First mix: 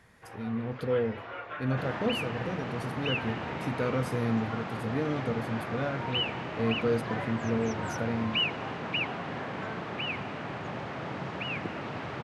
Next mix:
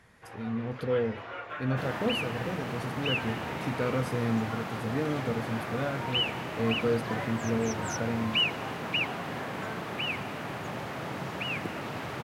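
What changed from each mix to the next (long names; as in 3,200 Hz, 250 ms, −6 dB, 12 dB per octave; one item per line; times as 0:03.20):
first sound: remove high-frequency loss of the air 91 metres
second sound: remove high-frequency loss of the air 120 metres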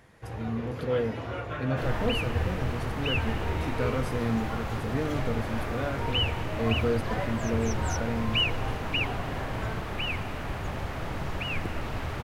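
first sound: remove resonant band-pass 1,700 Hz, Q 0.66
second sound: remove high-pass filter 130 Hz 24 dB per octave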